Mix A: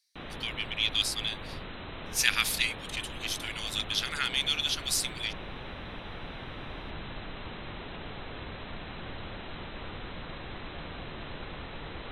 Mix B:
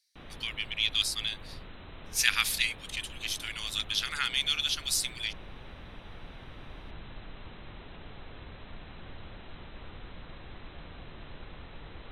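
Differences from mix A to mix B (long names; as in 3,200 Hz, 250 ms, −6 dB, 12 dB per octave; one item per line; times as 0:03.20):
background −8.0 dB
master: add low-shelf EQ 96 Hz +7.5 dB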